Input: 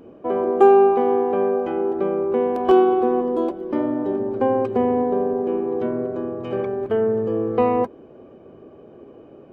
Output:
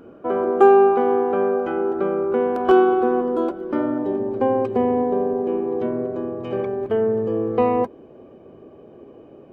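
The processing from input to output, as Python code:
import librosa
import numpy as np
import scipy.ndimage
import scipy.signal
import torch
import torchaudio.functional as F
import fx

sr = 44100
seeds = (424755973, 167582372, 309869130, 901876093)

y = fx.peak_eq(x, sr, hz=1400.0, db=fx.steps((0.0, 14.0), (3.98, -4.0)), octaves=0.21)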